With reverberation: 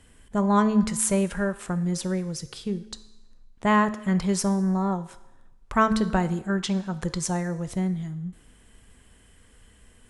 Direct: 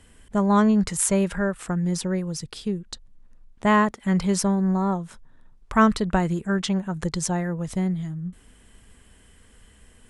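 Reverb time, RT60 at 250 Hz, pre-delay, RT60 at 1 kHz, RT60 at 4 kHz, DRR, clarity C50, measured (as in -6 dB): 1.0 s, 1.0 s, 4 ms, 1.0 s, 0.95 s, 11.5 dB, 15.0 dB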